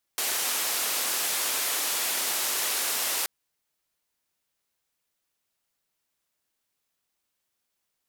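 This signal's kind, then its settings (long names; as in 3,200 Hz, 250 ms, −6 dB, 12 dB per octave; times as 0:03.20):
band-limited noise 380–15,000 Hz, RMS −28 dBFS 3.08 s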